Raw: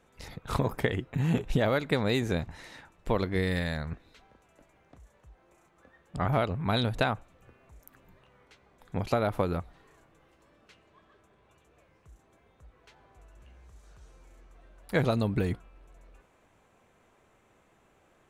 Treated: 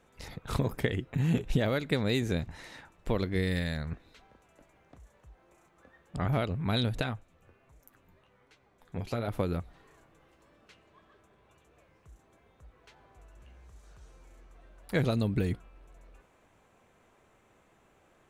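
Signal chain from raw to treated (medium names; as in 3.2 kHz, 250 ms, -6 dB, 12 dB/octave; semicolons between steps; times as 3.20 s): dynamic bell 930 Hz, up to -7 dB, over -43 dBFS, Q 0.87; 7.01–9.28 s: flange 1.3 Hz, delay 6.2 ms, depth 7 ms, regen +47%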